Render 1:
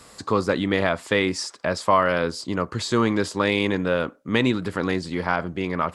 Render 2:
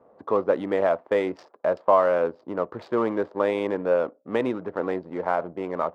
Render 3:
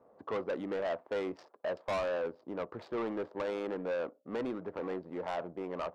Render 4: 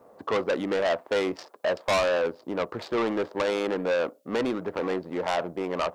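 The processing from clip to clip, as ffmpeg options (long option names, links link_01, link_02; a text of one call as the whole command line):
ffmpeg -i in.wav -af "adynamicsmooth=sensitivity=4.5:basefreq=580,bandpass=frequency=610:width_type=q:width=1.6:csg=0,volume=3.5dB" out.wav
ffmpeg -i in.wav -af "asoftclip=type=tanh:threshold=-23.5dB,volume=-6.5dB" out.wav
ffmpeg -i in.wav -af "highshelf=frequency=2700:gain=11,volume=8.5dB" out.wav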